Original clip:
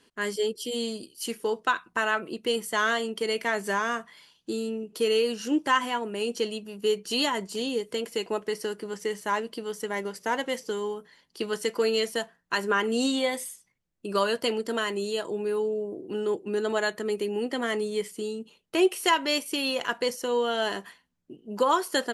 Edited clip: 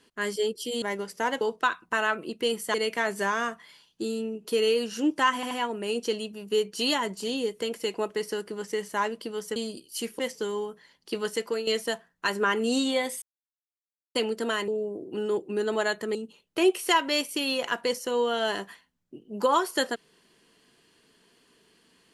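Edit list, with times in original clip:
0.82–1.45 s: swap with 9.88–10.47 s
2.78–3.22 s: delete
5.83 s: stutter 0.08 s, 3 plays
11.47–11.95 s: fade out equal-power, to -10 dB
13.50–14.43 s: mute
14.96–15.65 s: delete
17.12–18.32 s: delete

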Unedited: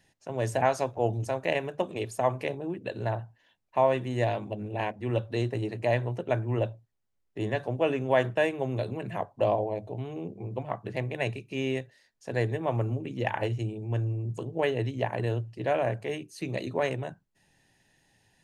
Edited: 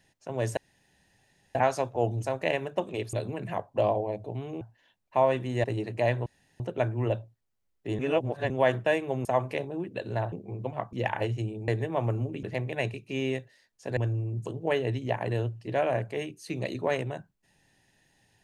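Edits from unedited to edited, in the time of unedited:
0.57 s: insert room tone 0.98 s
2.15–3.22 s: swap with 8.76–10.24 s
4.25–5.49 s: delete
6.11 s: insert room tone 0.34 s
7.50–8.01 s: reverse
10.85–12.39 s: swap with 13.14–13.89 s

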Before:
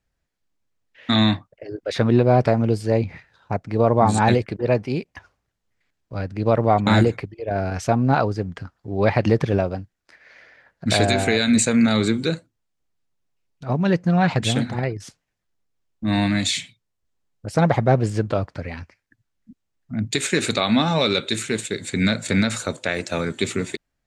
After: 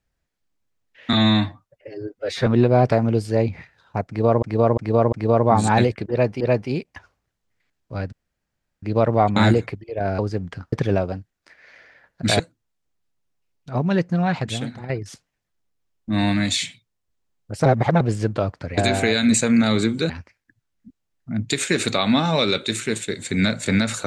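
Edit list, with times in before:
1.13–2.02 s: stretch 1.5×
3.63–3.98 s: loop, 4 plays
4.61–4.91 s: loop, 2 plays
6.33 s: insert room tone 0.70 s
7.69–8.23 s: delete
8.77–9.35 s: delete
11.02–12.34 s: move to 18.72 s
13.76–14.84 s: fade out, to -11 dB
17.60–17.95 s: reverse

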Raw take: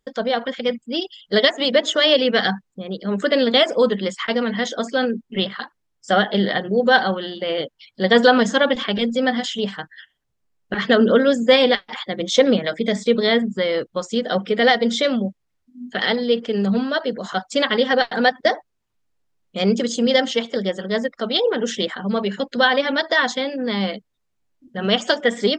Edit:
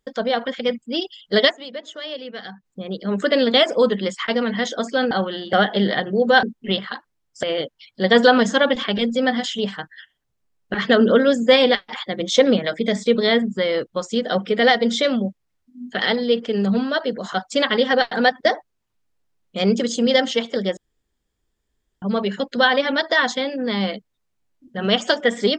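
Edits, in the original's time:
1.49–2.66 s: dip -16 dB, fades 0.41 s exponential
5.11–6.11 s: swap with 7.01–7.43 s
20.77–22.02 s: room tone

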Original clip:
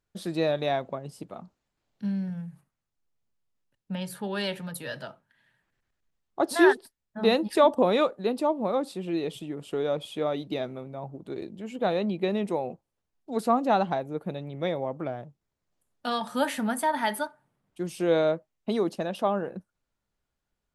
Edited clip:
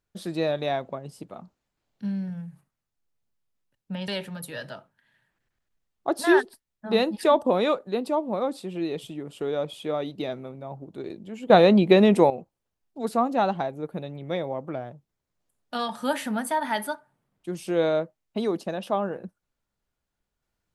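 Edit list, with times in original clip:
4.08–4.40 s: delete
11.82–12.62 s: gain +11 dB

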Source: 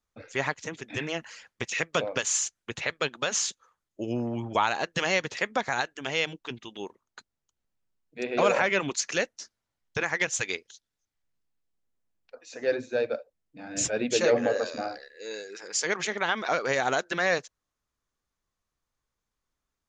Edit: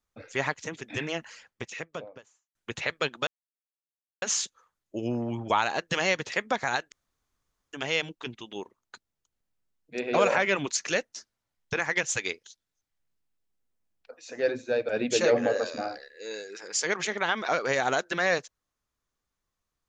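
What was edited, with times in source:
1.08–2.55 s: studio fade out
3.27 s: insert silence 0.95 s
5.97 s: insert room tone 0.81 s
13.13–13.89 s: delete

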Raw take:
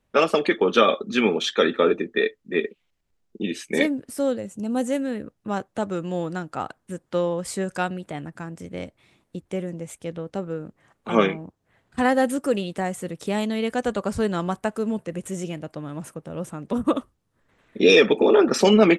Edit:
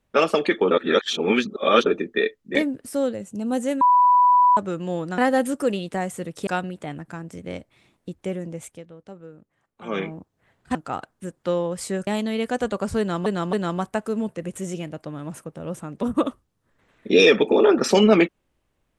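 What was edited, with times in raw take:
0.71–1.86 s: reverse
2.55–3.79 s: delete
5.05–5.81 s: bleep 989 Hz -12 dBFS
6.42–7.74 s: swap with 12.02–13.31 s
9.94–11.35 s: dip -12 dB, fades 0.16 s
14.23–14.50 s: loop, 3 plays

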